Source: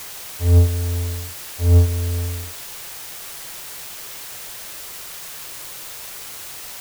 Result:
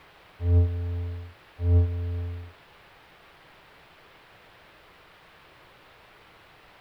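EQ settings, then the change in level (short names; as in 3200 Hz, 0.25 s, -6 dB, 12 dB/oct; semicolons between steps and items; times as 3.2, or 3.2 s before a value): air absorption 440 m; -7.5 dB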